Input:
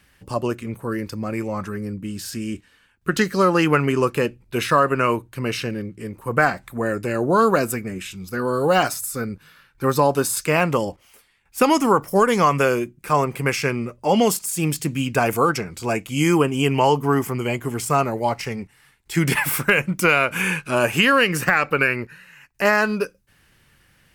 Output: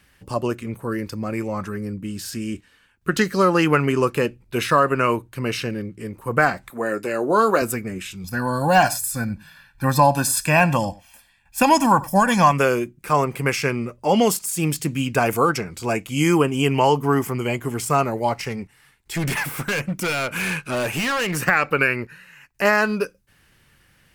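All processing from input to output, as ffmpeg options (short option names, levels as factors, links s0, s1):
-filter_complex "[0:a]asettb=1/sr,asplit=3[s0][s1][s2];[s0]atrim=end=6.704[s3];[s1]atrim=start=6.7:end=7.62,asetpts=PTS-STARTPTS,afade=t=in:d=0.004:c=qsin,afade=t=out:st=0.916:d=0.004:c=qsin,highpass=250,asplit=2[s4][s5];[s5]adelay=19,volume=0.266[s6];[s4][s6]amix=inputs=2:normalize=0,atrim=end_sample=40572[s7];[s2]atrim=start=7.616[s8];[s3][s7]acrossfade=d=0.004:c1=hsin:c2=qsin[s9];[s9][s8]acrossfade=d=0.004:c1=qsin:c2=hsin,asettb=1/sr,asplit=3[s10][s11][s12];[s10]atrim=end=8.244[s13];[s11]atrim=start=8.24:end=12.52,asetpts=PTS-STARTPTS,afade=t=in:d=0.004:c=qsin,afade=t=out:st=4.276:d=0.004:c=qsin,aecho=1:1:1.2:0.91,atrim=end_sample=188748,aecho=1:1:92:0.0944,atrim=end_sample=188748[s14];[s12]atrim=start=12.516[s15];[s13][s14]acrossfade=d=0.004:c1=hsin:c2=qsin[s16];[s16][s15]acrossfade=d=0.004:c1=qsin:c2=hsin,asettb=1/sr,asplit=3[s17][s18][s19];[s17]atrim=end=18.494[s20];[s18]atrim=start=18.49:end=21.37,asetpts=PTS-STARTPTS,afade=t=in:d=0.004:c=qsin,afade=t=out:st=2.876:d=0.004:c=qsin,asoftclip=type=hard:threshold=0.0944,deesser=0.4[s21];[s19]atrim=start=21.366[s22];[s20][s21]acrossfade=d=0.004:c1=hsin:c2=qsin[s23];[s23][s22]acrossfade=d=0.004:c1=qsin:c2=hsin"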